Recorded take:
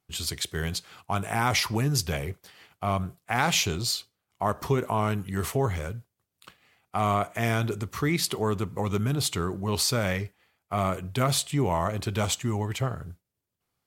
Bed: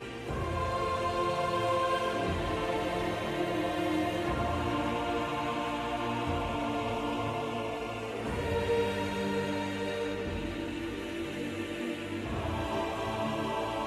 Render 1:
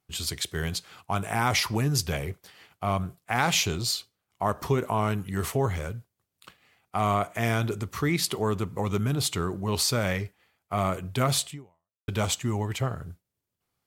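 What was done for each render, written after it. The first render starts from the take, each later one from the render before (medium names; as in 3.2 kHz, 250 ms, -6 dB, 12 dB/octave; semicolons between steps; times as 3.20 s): 11.48–12.08 s: fade out exponential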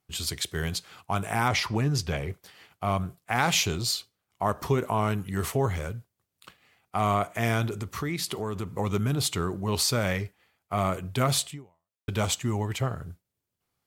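1.48–2.30 s: peaking EQ 13 kHz -12 dB 1.3 oct; 7.67–8.73 s: compression 2.5:1, threshold -28 dBFS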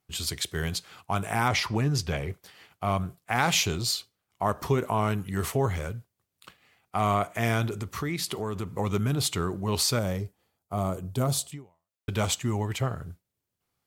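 9.99–11.52 s: peaking EQ 2.1 kHz -14 dB 1.6 oct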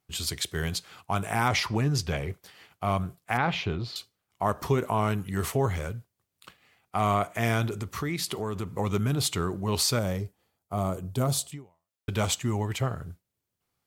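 3.37–3.96 s: distance through air 350 m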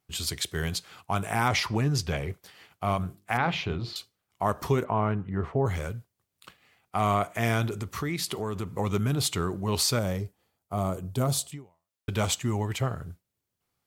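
2.93–3.93 s: hum notches 50/100/150/200/250/300/350/400/450 Hz; 4.83–5.65 s: low-pass 2.2 kHz -> 1 kHz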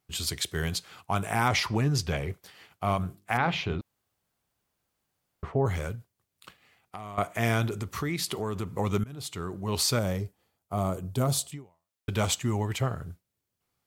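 3.81–5.43 s: room tone; 5.95–7.18 s: compression, threshold -37 dBFS; 9.04–9.94 s: fade in, from -21 dB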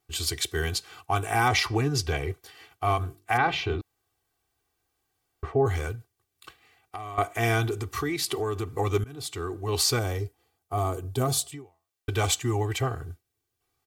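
comb 2.6 ms, depth 87%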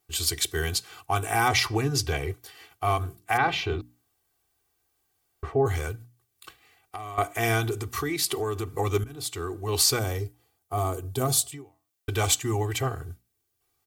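treble shelf 7.6 kHz +7.5 dB; hum notches 60/120/180/240/300 Hz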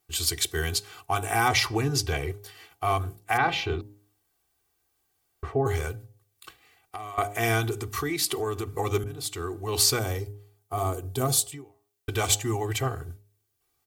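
de-hum 102.3 Hz, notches 9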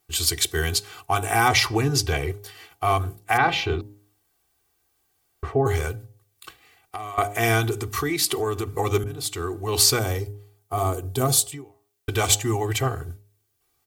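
trim +4 dB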